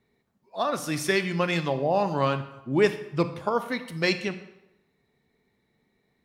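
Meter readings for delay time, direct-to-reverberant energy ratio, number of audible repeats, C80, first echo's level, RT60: none, 10.5 dB, none, 14.0 dB, none, 0.90 s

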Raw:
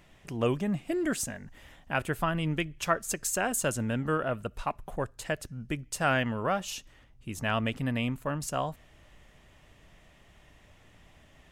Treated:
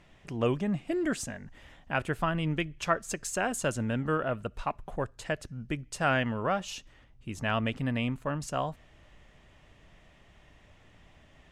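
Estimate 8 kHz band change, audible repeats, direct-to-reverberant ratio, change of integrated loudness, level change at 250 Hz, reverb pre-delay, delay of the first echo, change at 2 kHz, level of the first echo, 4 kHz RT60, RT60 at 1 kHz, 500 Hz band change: -5.0 dB, none, none, -0.5 dB, 0.0 dB, none, none, -0.5 dB, none, none, none, 0.0 dB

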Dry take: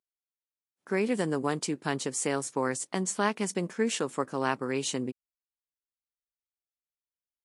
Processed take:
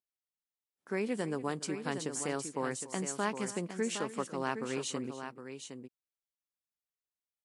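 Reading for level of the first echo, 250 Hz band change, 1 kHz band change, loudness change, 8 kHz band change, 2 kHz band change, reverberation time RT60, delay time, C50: -17.0 dB, -5.5 dB, -5.5 dB, -6.0 dB, -5.5 dB, -5.5 dB, none, 0.288 s, none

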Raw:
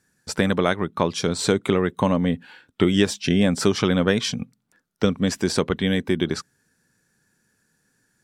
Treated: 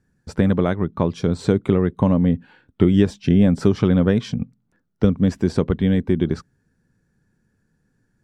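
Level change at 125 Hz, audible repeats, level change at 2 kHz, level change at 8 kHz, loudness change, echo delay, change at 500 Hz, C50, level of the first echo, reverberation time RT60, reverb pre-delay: +6.0 dB, none, -6.5 dB, under -10 dB, +3.0 dB, none, +0.5 dB, none, none, none, none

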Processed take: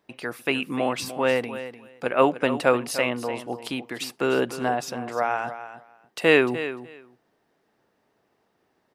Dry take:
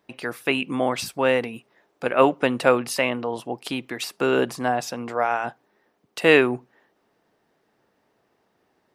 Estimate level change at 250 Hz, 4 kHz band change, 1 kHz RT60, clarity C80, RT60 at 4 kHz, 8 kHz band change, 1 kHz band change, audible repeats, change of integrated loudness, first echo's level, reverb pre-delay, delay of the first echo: -1.5 dB, -1.5 dB, none, none, none, -2.0 dB, -2.0 dB, 2, -2.0 dB, -12.5 dB, none, 0.299 s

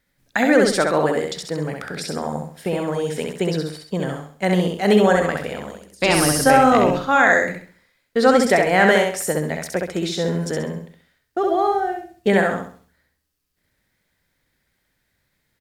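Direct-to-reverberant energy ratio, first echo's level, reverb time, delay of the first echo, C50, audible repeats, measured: none, -3.5 dB, none, 66 ms, none, 4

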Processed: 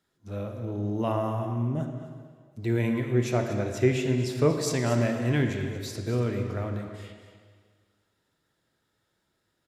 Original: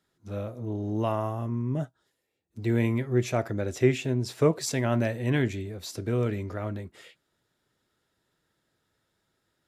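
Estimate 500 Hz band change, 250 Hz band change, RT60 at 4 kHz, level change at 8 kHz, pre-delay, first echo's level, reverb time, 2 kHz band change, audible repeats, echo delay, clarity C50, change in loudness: +0.5 dB, +0.5 dB, 1.6 s, 0.0 dB, 29 ms, -12.0 dB, 1.8 s, +0.5 dB, 1, 0.237 s, 5.0 dB, +0.5 dB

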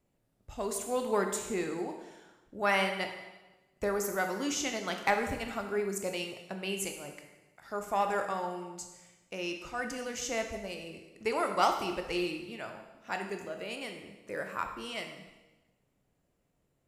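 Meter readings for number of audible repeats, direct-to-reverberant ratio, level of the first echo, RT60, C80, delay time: none, 4.0 dB, none, 1.1 s, 8.5 dB, none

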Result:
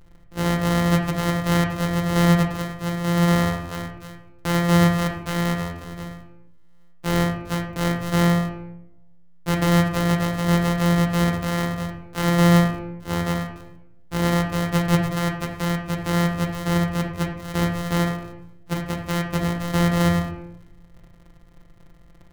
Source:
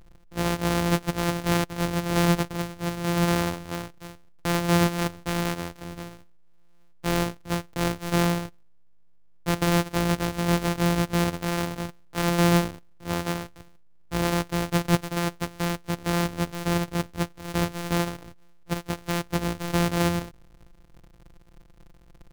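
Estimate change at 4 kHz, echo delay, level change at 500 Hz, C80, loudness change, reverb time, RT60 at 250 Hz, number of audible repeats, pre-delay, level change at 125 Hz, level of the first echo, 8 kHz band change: +1.5 dB, none, +2.5 dB, 8.0 dB, +4.0 dB, 0.95 s, 1.2 s, none, 8 ms, +6.0 dB, none, 0.0 dB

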